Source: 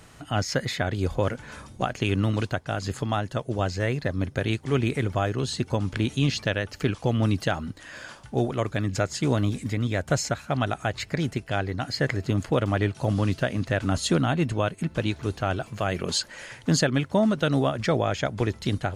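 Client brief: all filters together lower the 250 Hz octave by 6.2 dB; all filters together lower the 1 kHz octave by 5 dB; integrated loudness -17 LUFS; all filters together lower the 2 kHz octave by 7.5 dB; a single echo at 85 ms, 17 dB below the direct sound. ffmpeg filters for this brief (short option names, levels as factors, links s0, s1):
-af "equalizer=f=250:t=o:g=-8.5,equalizer=f=1000:t=o:g=-4.5,equalizer=f=2000:t=o:g=-8.5,aecho=1:1:85:0.141,volume=4.47"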